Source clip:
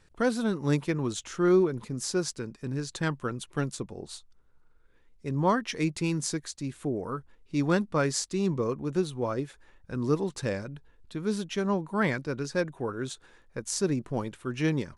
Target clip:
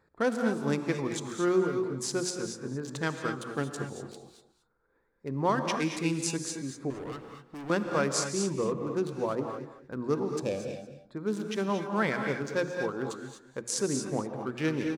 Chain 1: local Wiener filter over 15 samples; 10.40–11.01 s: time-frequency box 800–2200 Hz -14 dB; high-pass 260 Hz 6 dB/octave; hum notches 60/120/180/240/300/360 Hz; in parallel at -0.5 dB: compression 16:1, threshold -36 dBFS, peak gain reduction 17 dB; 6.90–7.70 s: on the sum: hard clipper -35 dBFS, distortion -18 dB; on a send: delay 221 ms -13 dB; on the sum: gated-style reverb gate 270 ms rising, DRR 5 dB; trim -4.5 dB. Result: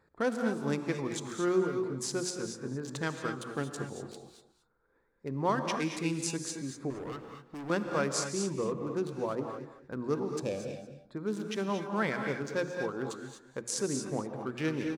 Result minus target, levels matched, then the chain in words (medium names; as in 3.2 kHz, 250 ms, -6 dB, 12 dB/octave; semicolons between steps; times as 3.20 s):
compression: peak gain reduction +10 dB
local Wiener filter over 15 samples; 10.40–11.01 s: time-frequency box 800–2200 Hz -14 dB; high-pass 260 Hz 6 dB/octave; hum notches 60/120/180/240/300/360 Hz; in parallel at -0.5 dB: compression 16:1, threshold -25.5 dBFS, peak gain reduction 7.5 dB; 6.90–7.70 s: on the sum: hard clipper -35 dBFS, distortion -17 dB; on a send: delay 221 ms -13 dB; on the sum: gated-style reverb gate 270 ms rising, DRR 5 dB; trim -4.5 dB